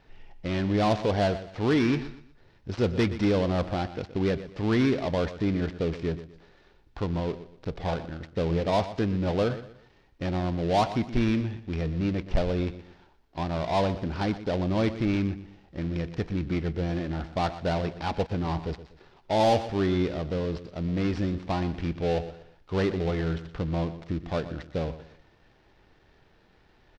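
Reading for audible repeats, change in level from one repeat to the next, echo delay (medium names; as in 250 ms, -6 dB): 3, -10.0 dB, 121 ms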